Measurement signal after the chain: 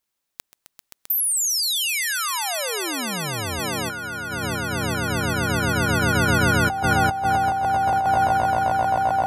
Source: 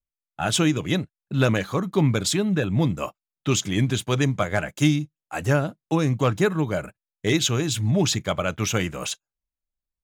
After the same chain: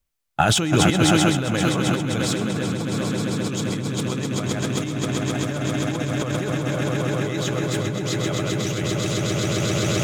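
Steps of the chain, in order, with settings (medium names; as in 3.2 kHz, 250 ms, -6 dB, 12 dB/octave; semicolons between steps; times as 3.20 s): echo with a slow build-up 131 ms, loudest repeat 8, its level -7 dB; compressor with a negative ratio -27 dBFS, ratio -1; trim +4 dB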